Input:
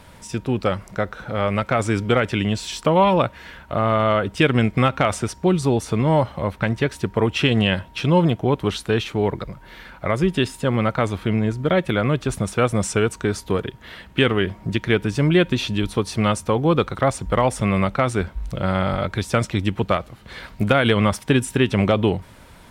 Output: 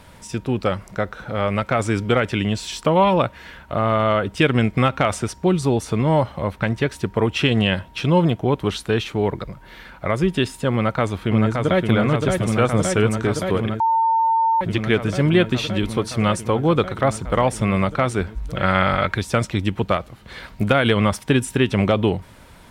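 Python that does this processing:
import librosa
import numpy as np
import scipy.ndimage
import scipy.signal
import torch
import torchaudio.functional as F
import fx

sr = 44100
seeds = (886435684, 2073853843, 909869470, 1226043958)

y = fx.echo_throw(x, sr, start_s=10.74, length_s=1.14, ms=570, feedback_pct=85, wet_db=-4.0)
y = fx.peak_eq(y, sr, hz=1900.0, db=10.0, octaves=1.8, at=(18.56, 19.15))
y = fx.edit(y, sr, fx.bleep(start_s=13.8, length_s=0.81, hz=903.0, db=-14.5), tone=tone)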